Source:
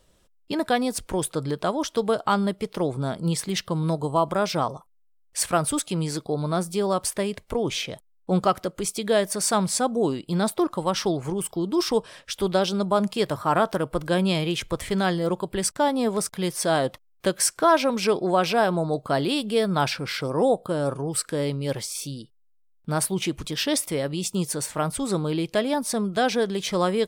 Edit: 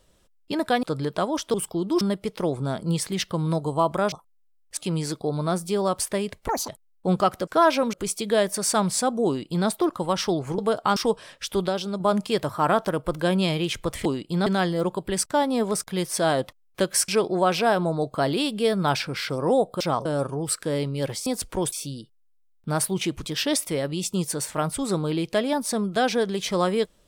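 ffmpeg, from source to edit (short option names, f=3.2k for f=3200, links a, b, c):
-filter_complex "[0:a]asplit=21[a][b][c][d][e][f][g][h][i][j][k][l][m][n][o][p][q][r][s][t][u];[a]atrim=end=0.832[v];[b]atrim=start=1.288:end=2.002[w];[c]atrim=start=11.358:end=11.832[x];[d]atrim=start=2.378:end=4.492[y];[e]atrim=start=4.738:end=5.392[z];[f]atrim=start=5.818:end=7.534[aa];[g]atrim=start=7.53:end=7.92,asetpts=PTS-STARTPTS,asetrate=84672,aresample=44100[ab];[h]atrim=start=7.916:end=8.712[ac];[i]atrim=start=17.538:end=18.002[ad];[j]atrim=start=8.708:end=11.362[ae];[k]atrim=start=1.998:end=2.382[af];[l]atrim=start=11.828:end=12.552[ag];[m]atrim=start=12.548:end=12.872,asetpts=PTS-STARTPTS,volume=-4.5dB[ah];[n]atrim=start=12.868:end=14.922[ai];[o]atrim=start=10.038:end=10.452[aj];[p]atrim=start=14.918:end=17.542[ak];[q]atrim=start=17.998:end=20.722[al];[r]atrim=start=4.488:end=4.742[am];[s]atrim=start=20.718:end=21.932[an];[t]atrim=start=0.828:end=1.292[ao];[u]atrim=start=21.928[ap];[v][w]acrossfade=d=0.004:c1=hsin:c2=hsin[aq];[aq][x]acrossfade=d=0.004:c1=hsin:c2=hsin[ar];[ar][y]acrossfade=d=0.004:c1=hsin:c2=hsin[as];[as][z]acrossfade=d=0.004:c1=hsin:c2=hsin[at];[at][aa]acrossfade=d=0.004:c1=hsin:c2=hsin[au];[au][ab]acrossfade=d=0.004:c1=hsin:c2=hsin[av];[av][ac]acrossfade=d=0.004:c1=hsin:c2=hsin[aw];[aw][ad]acrossfade=d=0.004:c1=hsin:c2=hsin[ax];[ax][ae]acrossfade=d=0.004:c1=hsin:c2=hsin[ay];[ay][af]acrossfade=d=0.004:c1=hsin:c2=hsin[az];[az][ag]acrossfade=d=0.004:c1=hsin:c2=hsin[ba];[ba][ah]acrossfade=d=0.004:c1=hsin:c2=hsin[bb];[bb][ai]acrossfade=d=0.004:c1=hsin:c2=hsin[bc];[bc][aj]acrossfade=d=0.004:c1=hsin:c2=hsin[bd];[bd][ak]acrossfade=d=0.004:c1=hsin:c2=hsin[be];[be][al]acrossfade=d=0.004:c1=hsin:c2=hsin[bf];[bf][am]acrossfade=d=0.004:c1=hsin:c2=hsin[bg];[bg][an]acrossfade=d=0.004:c1=hsin:c2=hsin[bh];[bh][ao]acrossfade=d=0.004:c1=hsin:c2=hsin[bi];[bi][ap]acrossfade=d=0.004:c1=hsin:c2=hsin"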